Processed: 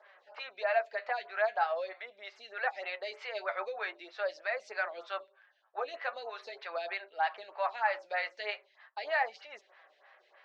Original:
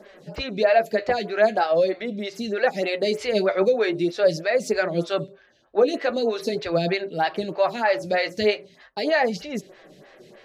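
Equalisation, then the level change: HPF 850 Hz 24 dB/oct; tape spacing loss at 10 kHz 37 dB; 0.0 dB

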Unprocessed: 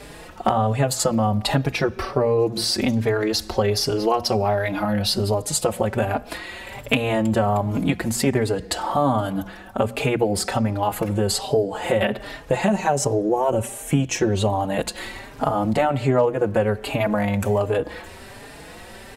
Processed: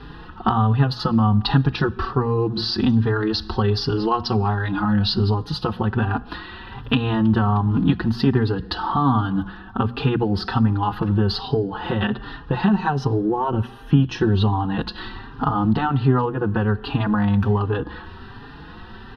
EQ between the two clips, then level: dynamic EQ 4800 Hz, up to +6 dB, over -41 dBFS, Q 1.6; air absorption 300 m; fixed phaser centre 2200 Hz, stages 6; +6.0 dB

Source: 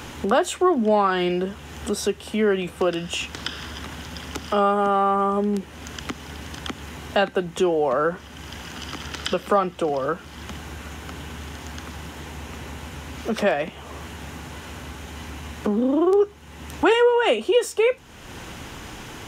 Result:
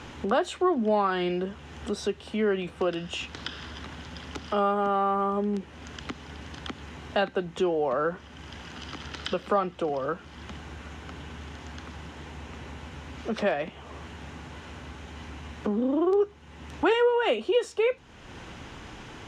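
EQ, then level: dynamic EQ 4100 Hz, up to +4 dB, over -49 dBFS, Q 5.1; air absorption 81 m; -5.0 dB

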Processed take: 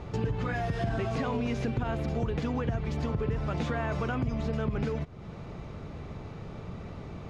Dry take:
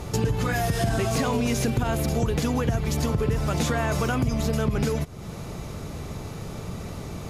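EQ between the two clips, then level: LPF 3000 Hz 12 dB/oct; -6.0 dB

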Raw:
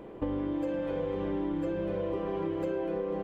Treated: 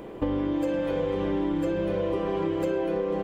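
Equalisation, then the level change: high shelf 3500 Hz +9 dB; +5.0 dB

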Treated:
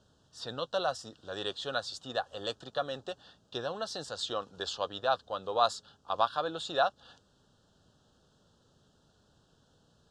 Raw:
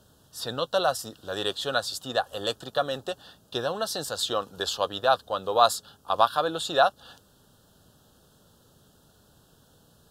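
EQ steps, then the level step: LPF 7100 Hz 24 dB/oct; -7.0 dB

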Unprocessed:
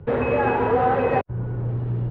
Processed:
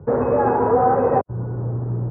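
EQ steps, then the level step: HPF 110 Hz 6 dB/oct; LPF 1300 Hz 24 dB/oct; +3.5 dB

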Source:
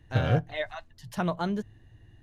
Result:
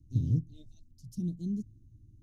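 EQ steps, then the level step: elliptic band-stop 290–5700 Hz, stop band 60 dB; bell 580 Hz -9 dB 0.51 oct; high shelf 5300 Hz -7.5 dB; -1.5 dB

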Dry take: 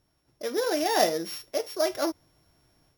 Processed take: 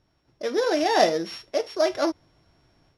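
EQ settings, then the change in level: LPF 5200 Hz 12 dB/oct; +4.0 dB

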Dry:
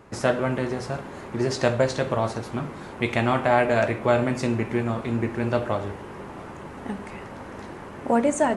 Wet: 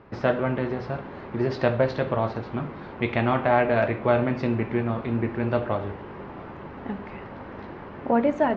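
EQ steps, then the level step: LPF 5000 Hz 24 dB/oct; air absorption 190 m; 0.0 dB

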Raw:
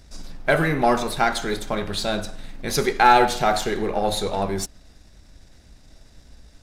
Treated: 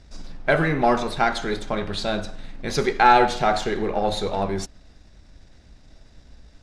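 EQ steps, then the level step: air absorption 73 m; 0.0 dB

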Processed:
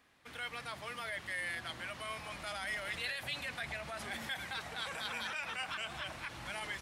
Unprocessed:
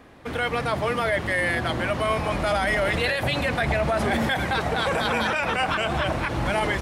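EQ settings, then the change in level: passive tone stack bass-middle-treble 5-5-5; low shelf 130 Hz -10 dB; -3.5 dB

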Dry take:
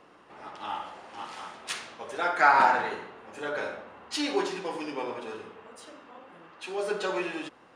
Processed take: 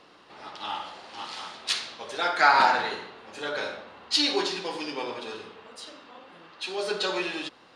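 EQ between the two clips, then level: bell 4200 Hz +13 dB 1 oct; 0.0 dB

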